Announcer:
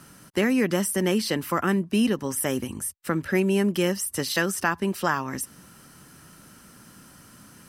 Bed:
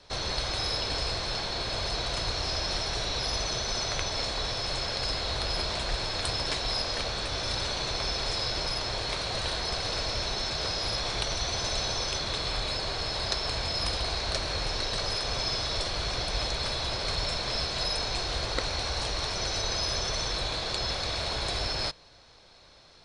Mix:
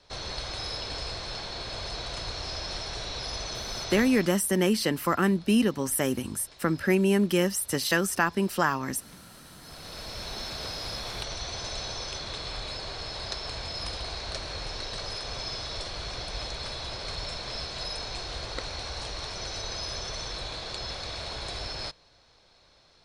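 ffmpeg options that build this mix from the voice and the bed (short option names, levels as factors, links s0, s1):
-filter_complex "[0:a]adelay=3550,volume=0.944[s0];[1:a]volume=4.73,afade=t=out:st=3.92:d=0.46:silence=0.11885,afade=t=in:st=9.57:d=0.82:silence=0.125893[s1];[s0][s1]amix=inputs=2:normalize=0"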